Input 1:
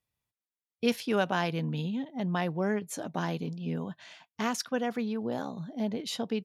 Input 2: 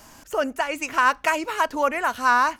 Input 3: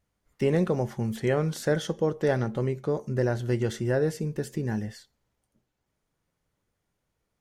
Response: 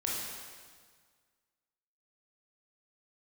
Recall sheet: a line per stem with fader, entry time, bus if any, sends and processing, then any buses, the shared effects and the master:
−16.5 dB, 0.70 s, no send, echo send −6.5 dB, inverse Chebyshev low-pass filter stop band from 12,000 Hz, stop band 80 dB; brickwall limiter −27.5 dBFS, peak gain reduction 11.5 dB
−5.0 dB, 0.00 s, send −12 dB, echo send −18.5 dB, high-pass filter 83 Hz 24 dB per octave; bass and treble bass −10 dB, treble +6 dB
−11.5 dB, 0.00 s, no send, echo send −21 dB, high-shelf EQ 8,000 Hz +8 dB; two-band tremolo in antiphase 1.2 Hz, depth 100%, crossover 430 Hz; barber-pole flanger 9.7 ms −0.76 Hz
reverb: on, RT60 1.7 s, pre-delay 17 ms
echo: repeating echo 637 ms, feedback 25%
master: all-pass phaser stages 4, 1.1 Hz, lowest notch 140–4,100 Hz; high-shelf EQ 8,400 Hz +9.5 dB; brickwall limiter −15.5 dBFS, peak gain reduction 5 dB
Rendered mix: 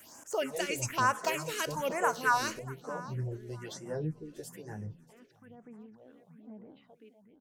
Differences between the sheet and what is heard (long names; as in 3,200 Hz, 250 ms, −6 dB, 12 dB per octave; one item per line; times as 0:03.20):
stem 2: send −12 dB → −21.5 dB
stem 3 −11.5 dB → −2.0 dB
master: missing high-shelf EQ 8,400 Hz +9.5 dB